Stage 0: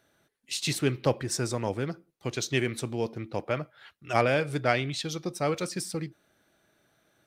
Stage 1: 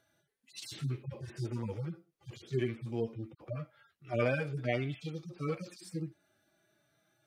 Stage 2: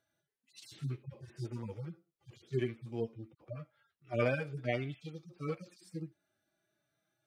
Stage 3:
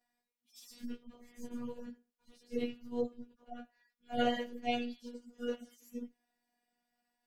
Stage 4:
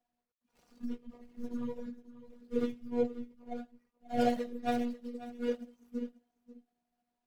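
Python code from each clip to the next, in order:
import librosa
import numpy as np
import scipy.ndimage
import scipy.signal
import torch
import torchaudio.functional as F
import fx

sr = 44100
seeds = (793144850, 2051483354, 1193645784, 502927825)

y1 = fx.hpss_only(x, sr, part='harmonic')
y1 = y1 * 10.0 ** (-3.0 / 20.0)
y2 = fx.upward_expand(y1, sr, threshold_db=-45.0, expansion=1.5)
y3 = fx.partial_stretch(y2, sr, pct=110)
y3 = fx.robotise(y3, sr, hz=241.0)
y3 = y3 * 10.0 ** (5.0 / 20.0)
y4 = scipy.signal.medfilt(y3, 25)
y4 = y4 + 10.0 ** (-16.0 / 20.0) * np.pad(y4, (int(539 * sr / 1000.0), 0))[:len(y4)]
y4 = y4 * 10.0 ** (4.5 / 20.0)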